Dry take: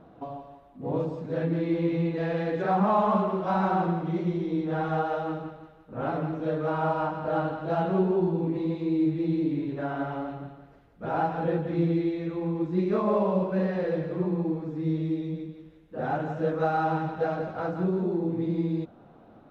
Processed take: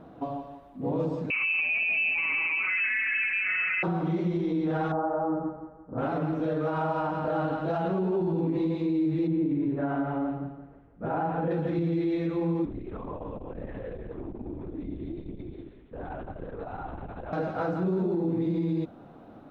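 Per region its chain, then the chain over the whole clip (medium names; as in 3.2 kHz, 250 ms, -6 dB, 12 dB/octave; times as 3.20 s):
1.30–3.83 s: bass shelf 140 Hz +10.5 dB + frequency inversion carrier 2.8 kHz
4.92–5.98 s: low-pass 1.2 kHz 24 dB/octave + doubling 16 ms -6 dB
9.27–11.51 s: distance through air 420 m + tape noise reduction on one side only decoder only
12.65–17.33 s: compression, threshold -37 dBFS + LPC vocoder at 8 kHz whisper + transformer saturation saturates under 100 Hz
whole clip: peaking EQ 280 Hz +4.5 dB 0.25 oct; peak limiter -23.5 dBFS; trim +3 dB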